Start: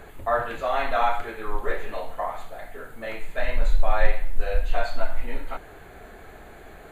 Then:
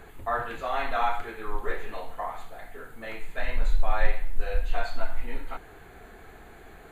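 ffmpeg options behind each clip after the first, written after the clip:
ffmpeg -i in.wav -af "equalizer=frequency=590:width=6.6:gain=-8,volume=-3dB" out.wav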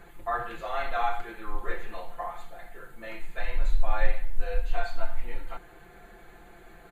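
ffmpeg -i in.wav -af "aecho=1:1:5.8:0.72,volume=-4.5dB" out.wav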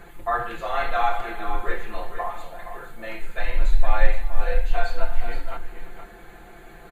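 ffmpeg -i in.wav -af "aecho=1:1:349|468:0.1|0.335,volume=5.5dB" out.wav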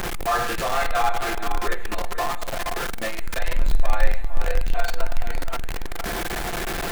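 ffmpeg -i in.wav -af "aeval=exprs='val(0)+0.5*0.112*sgn(val(0))':channel_layout=same,volume=-2.5dB" out.wav

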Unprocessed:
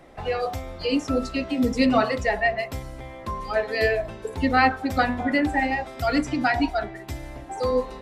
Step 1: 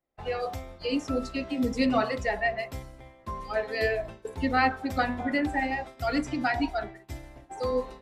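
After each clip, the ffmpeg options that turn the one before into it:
ffmpeg -i in.wav -af "agate=range=-33dB:threshold=-31dB:ratio=3:detection=peak,volume=-5dB" out.wav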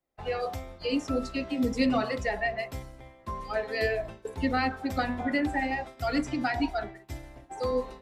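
ffmpeg -i in.wav -filter_complex "[0:a]acrossover=split=400|3000[link_01][link_02][link_03];[link_02]acompressor=threshold=-26dB:ratio=6[link_04];[link_01][link_04][link_03]amix=inputs=3:normalize=0" out.wav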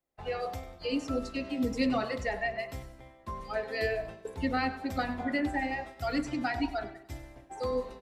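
ffmpeg -i in.wav -af "aecho=1:1:97|194|291|388:0.158|0.0666|0.028|0.0117,volume=-3dB" out.wav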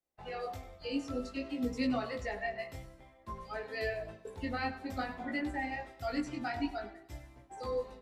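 ffmpeg -i in.wav -af "flanger=delay=16:depth=5.5:speed=0.54,volume=-2dB" out.wav

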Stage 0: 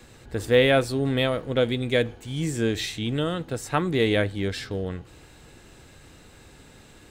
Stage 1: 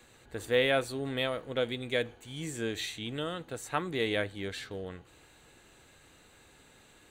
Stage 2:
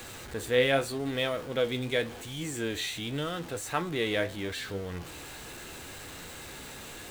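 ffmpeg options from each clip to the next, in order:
ffmpeg -i in.wav -af "lowshelf=frequency=330:gain=-9,bandreject=frequency=5200:width=5.1,volume=-5.5dB" out.wav
ffmpeg -i in.wav -af "aeval=exprs='val(0)+0.5*0.01*sgn(val(0))':channel_layout=same,flanger=delay=9.4:depth=6.8:regen=63:speed=0.83:shape=triangular,volume=5dB" out.wav

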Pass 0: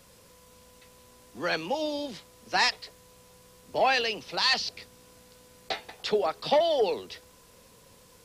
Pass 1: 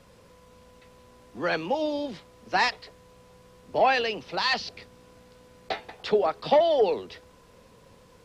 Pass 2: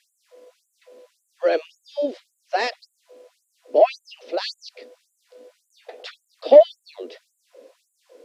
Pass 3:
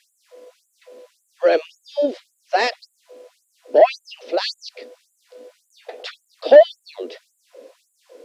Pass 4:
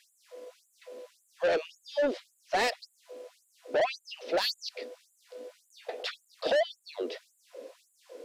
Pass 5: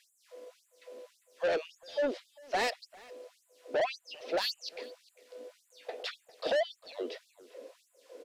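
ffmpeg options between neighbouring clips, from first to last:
ffmpeg -i in.wav -af "lowpass=frequency=2000:poles=1,volume=3.5dB" out.wav
ffmpeg -i in.wav -af "lowshelf=frequency=750:width_type=q:width=3:gain=7,afftfilt=real='re*gte(b*sr/1024,230*pow(7000/230,0.5+0.5*sin(2*PI*1.8*pts/sr)))':imag='im*gte(b*sr/1024,230*pow(7000/230,0.5+0.5*sin(2*PI*1.8*pts/sr)))':win_size=1024:overlap=0.75,volume=-1dB" out.wav
ffmpeg -i in.wav -af "acontrast=40,volume=-1dB" out.wav
ffmpeg -i in.wav -af "alimiter=limit=-9.5dB:level=0:latency=1:release=496,asoftclip=type=tanh:threshold=-20.5dB,volume=-2dB" out.wav
ffmpeg -i in.wav -filter_complex "[0:a]asplit=2[link_01][link_02];[link_02]adelay=400,highpass=300,lowpass=3400,asoftclip=type=hard:threshold=-31dB,volume=-17dB[link_03];[link_01][link_03]amix=inputs=2:normalize=0,volume=-3dB" out.wav

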